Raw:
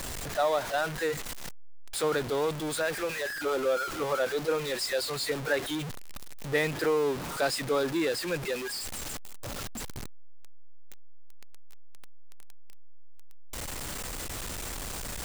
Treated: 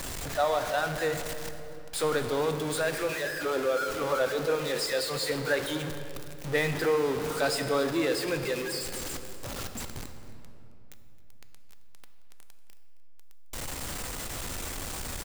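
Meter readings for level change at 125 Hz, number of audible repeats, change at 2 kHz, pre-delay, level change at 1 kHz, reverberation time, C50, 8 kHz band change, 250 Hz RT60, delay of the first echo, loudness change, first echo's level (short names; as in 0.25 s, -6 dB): +2.0 dB, 1, +1.0 dB, 4 ms, +1.0 dB, 3.0 s, 8.0 dB, +0.5 dB, 3.6 s, 0.268 s, +0.5 dB, -18.0 dB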